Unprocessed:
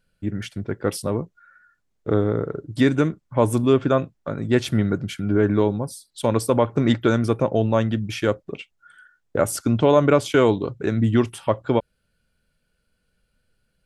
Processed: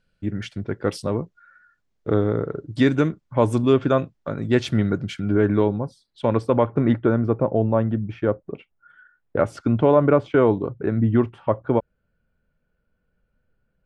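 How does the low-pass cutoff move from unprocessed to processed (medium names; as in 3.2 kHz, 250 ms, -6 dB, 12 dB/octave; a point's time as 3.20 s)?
5.30 s 6.1 kHz
5.75 s 2.5 kHz
6.61 s 2.5 kHz
7.11 s 1.2 kHz
8.42 s 1.2 kHz
9.52 s 2.8 kHz
10.02 s 1.5 kHz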